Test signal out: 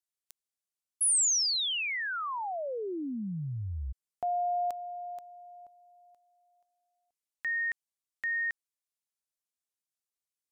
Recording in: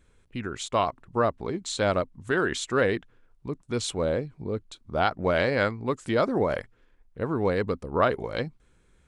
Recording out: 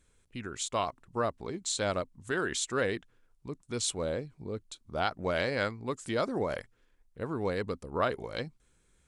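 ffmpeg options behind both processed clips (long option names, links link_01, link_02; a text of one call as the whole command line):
ffmpeg -i in.wav -af "equalizer=frequency=8700:width=0.48:gain=10,volume=-7dB" out.wav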